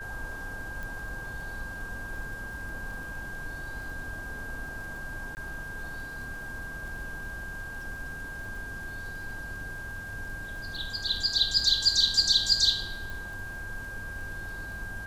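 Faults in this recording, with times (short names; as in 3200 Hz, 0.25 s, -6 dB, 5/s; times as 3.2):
crackle 23/s -40 dBFS
tone 1600 Hz -38 dBFS
0.83 pop
5.35–5.37 gap 19 ms
13.1 pop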